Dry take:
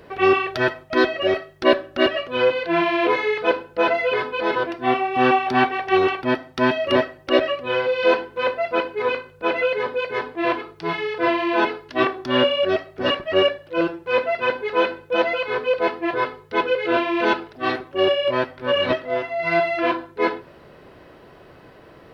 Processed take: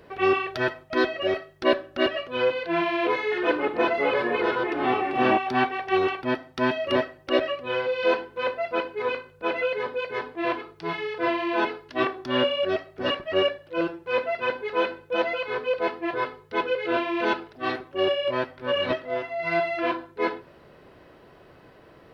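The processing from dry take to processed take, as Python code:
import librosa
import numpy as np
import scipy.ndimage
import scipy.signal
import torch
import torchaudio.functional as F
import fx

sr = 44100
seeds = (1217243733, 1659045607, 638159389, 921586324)

y = fx.echo_pitch(x, sr, ms=105, semitones=-3, count=2, db_per_echo=-3.0, at=(3.21, 5.38))
y = y * librosa.db_to_amplitude(-5.0)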